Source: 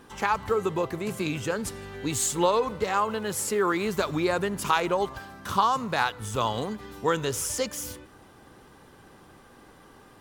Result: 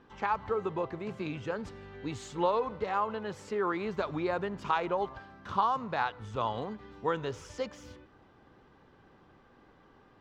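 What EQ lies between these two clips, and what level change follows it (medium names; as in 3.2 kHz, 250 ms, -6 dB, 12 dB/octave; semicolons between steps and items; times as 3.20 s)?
dynamic bell 790 Hz, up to +4 dB, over -37 dBFS, Q 1.1; distance through air 190 m; -7.0 dB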